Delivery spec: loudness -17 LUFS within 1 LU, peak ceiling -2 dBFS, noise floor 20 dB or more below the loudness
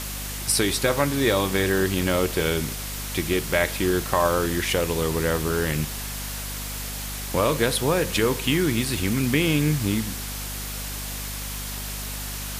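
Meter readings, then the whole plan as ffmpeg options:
hum 50 Hz; harmonics up to 250 Hz; hum level -32 dBFS; noise floor -32 dBFS; noise floor target -44 dBFS; loudness -24.0 LUFS; peak -6.5 dBFS; loudness target -17.0 LUFS
-> -af "bandreject=f=50:t=h:w=6,bandreject=f=100:t=h:w=6,bandreject=f=150:t=h:w=6,bandreject=f=200:t=h:w=6,bandreject=f=250:t=h:w=6"
-af "afftdn=nr=12:nf=-32"
-af "volume=7dB,alimiter=limit=-2dB:level=0:latency=1"

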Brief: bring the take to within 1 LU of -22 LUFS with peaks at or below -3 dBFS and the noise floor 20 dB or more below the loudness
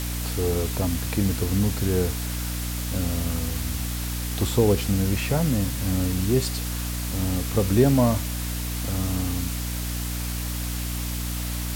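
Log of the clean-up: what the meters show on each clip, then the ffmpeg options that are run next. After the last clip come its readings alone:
hum 60 Hz; harmonics up to 300 Hz; hum level -27 dBFS; noise floor -29 dBFS; noise floor target -45 dBFS; loudness -25.0 LUFS; peak -6.5 dBFS; loudness target -22.0 LUFS
-> -af "bandreject=f=60:t=h:w=4,bandreject=f=120:t=h:w=4,bandreject=f=180:t=h:w=4,bandreject=f=240:t=h:w=4,bandreject=f=300:t=h:w=4"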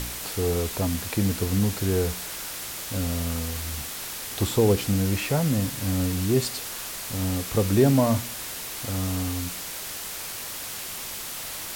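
hum none; noise floor -35 dBFS; noise floor target -47 dBFS
-> -af "afftdn=nr=12:nf=-35"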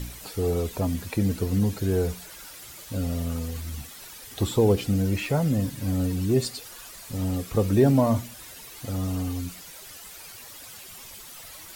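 noise floor -44 dBFS; noise floor target -46 dBFS
-> -af "afftdn=nr=6:nf=-44"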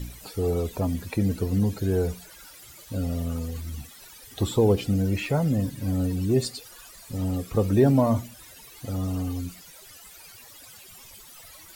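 noise floor -48 dBFS; loudness -26.0 LUFS; peak -8.5 dBFS; loudness target -22.0 LUFS
-> -af "volume=4dB"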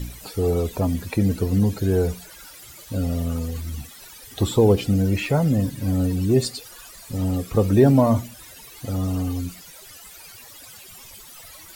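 loudness -22.0 LUFS; peak -4.5 dBFS; noise floor -44 dBFS

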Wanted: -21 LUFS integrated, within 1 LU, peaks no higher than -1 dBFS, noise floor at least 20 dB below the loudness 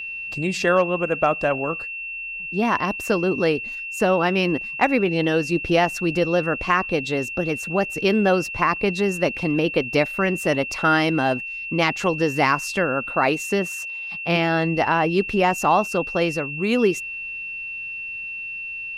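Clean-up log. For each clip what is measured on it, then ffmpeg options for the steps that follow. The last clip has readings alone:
steady tone 2700 Hz; tone level -29 dBFS; loudness -22.0 LUFS; peak -5.0 dBFS; loudness target -21.0 LUFS
-> -af "bandreject=f=2.7k:w=30"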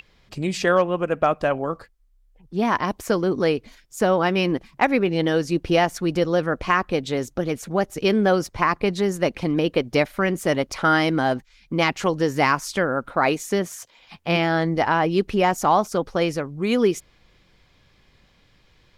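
steady tone none; loudness -22.0 LUFS; peak -5.5 dBFS; loudness target -21.0 LUFS
-> -af "volume=1dB"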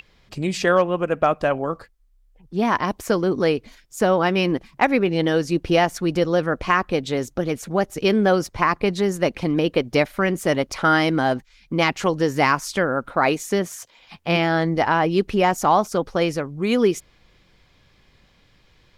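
loudness -21.0 LUFS; peak -4.5 dBFS; noise floor -58 dBFS

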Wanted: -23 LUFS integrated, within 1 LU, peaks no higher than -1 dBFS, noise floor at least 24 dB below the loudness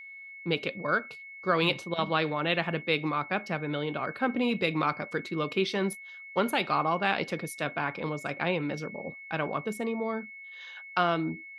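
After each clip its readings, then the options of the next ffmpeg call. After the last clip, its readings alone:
steady tone 2200 Hz; tone level -43 dBFS; loudness -30.0 LUFS; peak -11.5 dBFS; loudness target -23.0 LUFS
-> -af "bandreject=f=2.2k:w=30"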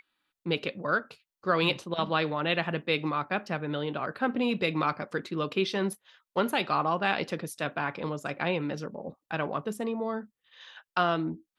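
steady tone none; loudness -30.0 LUFS; peak -11.5 dBFS; loudness target -23.0 LUFS
-> -af "volume=7dB"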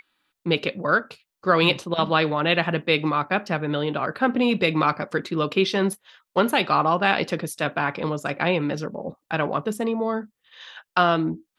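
loudness -23.0 LUFS; peak -4.5 dBFS; noise floor -83 dBFS

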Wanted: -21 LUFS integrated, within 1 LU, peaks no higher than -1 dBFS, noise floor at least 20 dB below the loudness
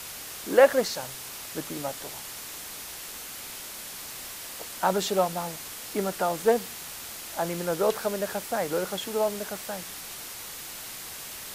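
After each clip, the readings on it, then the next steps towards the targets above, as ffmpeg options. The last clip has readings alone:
noise floor -40 dBFS; noise floor target -50 dBFS; loudness -29.5 LUFS; peak -6.0 dBFS; loudness target -21.0 LUFS
-> -af "afftdn=nr=10:nf=-40"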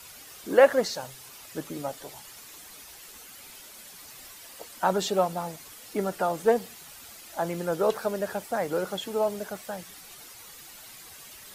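noise floor -47 dBFS; noise floor target -48 dBFS
-> -af "afftdn=nr=6:nf=-47"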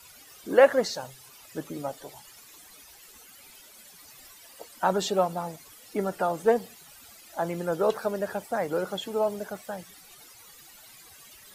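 noise floor -52 dBFS; loudness -28.0 LUFS; peak -6.5 dBFS; loudness target -21.0 LUFS
-> -af "volume=7dB,alimiter=limit=-1dB:level=0:latency=1"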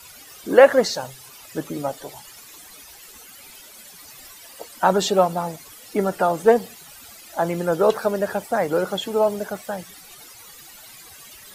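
loudness -21.0 LUFS; peak -1.0 dBFS; noise floor -45 dBFS

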